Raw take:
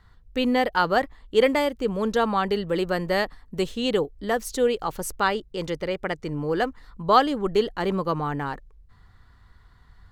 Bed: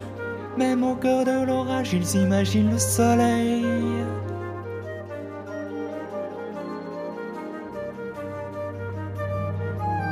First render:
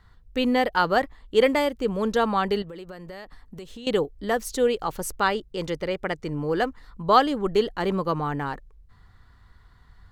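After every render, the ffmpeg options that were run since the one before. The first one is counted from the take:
ffmpeg -i in.wav -filter_complex "[0:a]asettb=1/sr,asplit=3[link_01][link_02][link_03];[link_01]atrim=end=2.624[link_04];[link_02]atrim=start=2.62:end=3.87,asetpts=PTS-STARTPTS,afade=type=in:duration=0.004:curve=qsin,afade=type=out:start_time=1.246:duration=0.004:curve=qsin,acompressor=threshold=-37dB:ratio=6:attack=3.2:release=140:knee=1:detection=peak[link_05];[link_03]atrim=start=3.866[link_06];[link_04][link_05]acrossfade=duration=0.004:curve1=hsin:curve2=qsin[link_07];[link_07][link_06]acrossfade=duration=0.004:curve1=qsin:curve2=hsin" out.wav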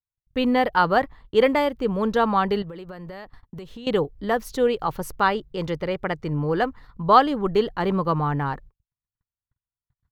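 ffmpeg -i in.wav -af "agate=range=-49dB:threshold=-44dB:ratio=16:detection=peak,equalizer=frequency=125:width_type=o:width=1:gain=8,equalizer=frequency=1000:width_type=o:width=1:gain=4,equalizer=frequency=8000:width_type=o:width=1:gain=-9" out.wav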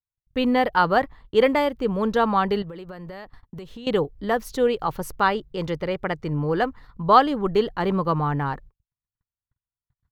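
ffmpeg -i in.wav -af anull out.wav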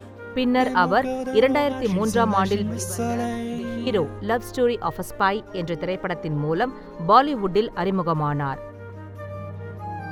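ffmpeg -i in.wav -i bed.wav -filter_complex "[1:a]volume=-6.5dB[link_01];[0:a][link_01]amix=inputs=2:normalize=0" out.wav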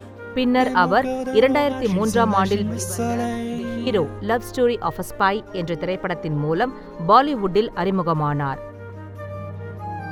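ffmpeg -i in.wav -af "volume=2dB,alimiter=limit=-2dB:level=0:latency=1" out.wav

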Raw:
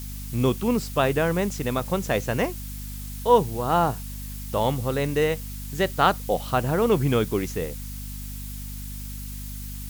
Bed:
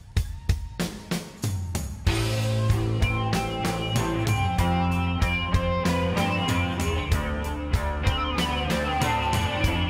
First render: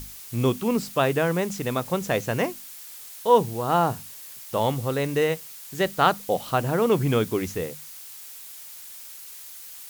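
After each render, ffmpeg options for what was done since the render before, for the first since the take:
ffmpeg -i in.wav -af "bandreject=frequency=50:width_type=h:width=6,bandreject=frequency=100:width_type=h:width=6,bandreject=frequency=150:width_type=h:width=6,bandreject=frequency=200:width_type=h:width=6,bandreject=frequency=250:width_type=h:width=6" out.wav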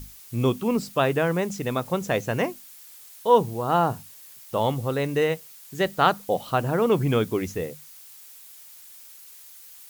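ffmpeg -i in.wav -af "afftdn=noise_reduction=6:noise_floor=-42" out.wav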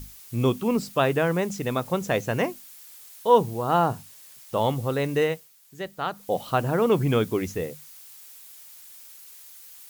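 ffmpeg -i in.wav -filter_complex "[0:a]asettb=1/sr,asplit=3[link_01][link_02][link_03];[link_01]atrim=end=3.864[link_04];[link_02]atrim=start=3.86:end=4.57,asetpts=PTS-STARTPTS,afade=type=in:duration=0.004:curve=qsin,afade=type=out:start_time=0.706:duration=0.004:curve=qsin,equalizer=frequency=15000:width=1.5:gain=-5.5[link_05];[link_03]atrim=start=4.566[link_06];[link_04][link_05]acrossfade=duration=0.004:curve1=hsin:curve2=qsin[link_07];[link_07][link_06]acrossfade=duration=0.004:curve1=qsin:curve2=hsin,asplit=3[link_08][link_09][link_10];[link_08]atrim=end=5.5,asetpts=PTS-STARTPTS,afade=type=out:start_time=5.22:duration=0.28:silence=0.316228[link_11];[link_09]atrim=start=5.5:end=6.11,asetpts=PTS-STARTPTS,volume=-10dB[link_12];[link_10]atrim=start=6.11,asetpts=PTS-STARTPTS,afade=type=in:duration=0.28:silence=0.316228[link_13];[link_11][link_12][link_13]concat=n=3:v=0:a=1" out.wav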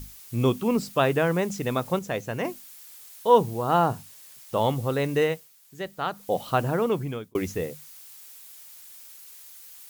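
ffmpeg -i in.wav -filter_complex "[0:a]asplit=4[link_01][link_02][link_03][link_04];[link_01]atrim=end=1.992[link_05];[link_02]atrim=start=1.988:end=2.452,asetpts=PTS-STARTPTS,volume=-5dB[link_06];[link_03]atrim=start=2.448:end=7.35,asetpts=PTS-STARTPTS,afade=type=out:start_time=4.182:duration=0.72[link_07];[link_04]atrim=start=7.35,asetpts=PTS-STARTPTS,afade=type=in:duration=0.004:curve=hsin[link_08];[link_05][link_06]acrossfade=duration=0.004:curve1=hsin:curve2=hsin[link_09];[link_07][link_08]concat=n=2:v=0:a=1[link_10];[link_09][link_10]acrossfade=duration=0.004:curve1=hsin:curve2=hsin" out.wav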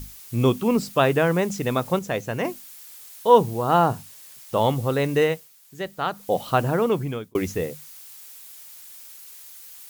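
ffmpeg -i in.wav -af "volume=3dB" out.wav

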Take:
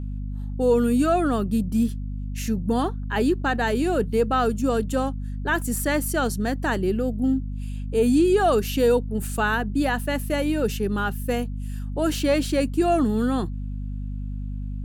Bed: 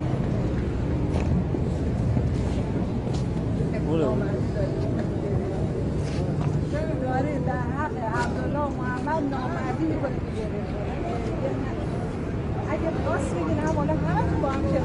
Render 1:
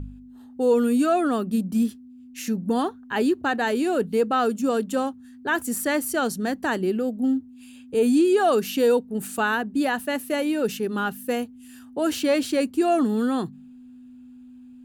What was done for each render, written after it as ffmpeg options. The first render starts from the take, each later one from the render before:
ffmpeg -i in.wav -af "bandreject=frequency=50:width_type=h:width=4,bandreject=frequency=100:width_type=h:width=4,bandreject=frequency=150:width_type=h:width=4,bandreject=frequency=200:width_type=h:width=4" out.wav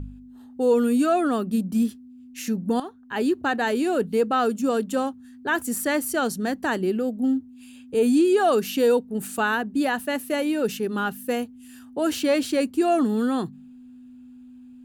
ffmpeg -i in.wav -filter_complex "[0:a]asplit=2[link_01][link_02];[link_01]atrim=end=2.8,asetpts=PTS-STARTPTS,afade=type=out:start_time=2.796:duration=0.004:curve=hsin:silence=0.237137[link_03];[link_02]atrim=start=2.8,asetpts=PTS-STARTPTS,afade=type=in:duration=0.56:silence=0.237137[link_04];[link_03][link_04]concat=n=2:v=0:a=1" out.wav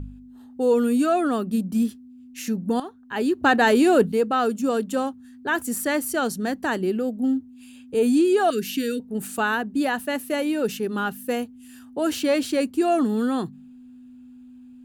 ffmpeg -i in.wav -filter_complex "[0:a]asettb=1/sr,asplit=3[link_01][link_02][link_03];[link_01]atrim=end=3.424[link_04];[link_02]atrim=start=3.42:end=4.12,asetpts=PTS-STARTPTS,afade=type=in:duration=0.004:curve=qsin,afade=type=out:start_time=0.696:duration=0.004:curve=qsin,acontrast=68[link_05];[link_03]atrim=start=4.116[link_06];[link_04][link_05]acrossfade=duration=0.004:curve1=hsin:curve2=qsin[link_07];[link_07][link_06]acrossfade=duration=0.004:curve1=qsin:curve2=hsin,asettb=1/sr,asplit=3[link_08][link_09][link_10];[link_08]atrim=end=8.504[link_11];[link_09]atrim=start=8.5:end=9,asetpts=PTS-STARTPTS,afade=type=in:duration=0.004:curve=qsin,afade=type=out:start_time=0.496:duration=0.004:curve=qsin,asuperstop=centerf=780:order=8:qfactor=0.73[link_12];[link_10]atrim=start=8.996[link_13];[link_11][link_12]acrossfade=duration=0.004:curve1=hsin:curve2=qsin[link_14];[link_14][link_13]acrossfade=duration=0.004:curve1=qsin:curve2=hsin" out.wav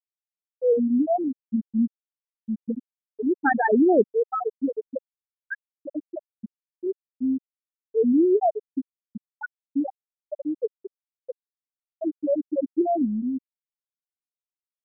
ffmpeg -i in.wav -af "afwtdn=0.0501,afftfilt=real='re*gte(hypot(re,im),0.794)':imag='im*gte(hypot(re,im),0.794)':win_size=1024:overlap=0.75" out.wav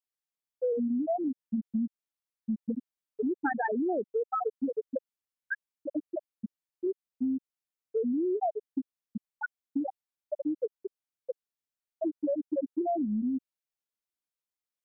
ffmpeg -i in.wav -filter_complex "[0:a]acrossover=split=680[link_01][link_02];[link_01]alimiter=limit=-19.5dB:level=0:latency=1:release=82[link_03];[link_03][link_02]amix=inputs=2:normalize=0,acompressor=threshold=-27dB:ratio=6" out.wav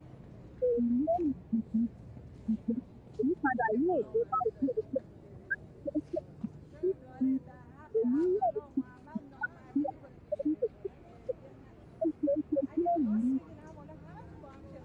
ffmpeg -i in.wav -i bed.wav -filter_complex "[1:a]volume=-25.5dB[link_01];[0:a][link_01]amix=inputs=2:normalize=0" out.wav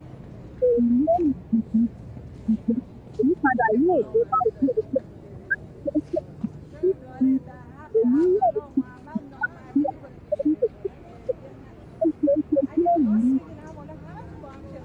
ffmpeg -i in.wav -af "volume=9.5dB" out.wav

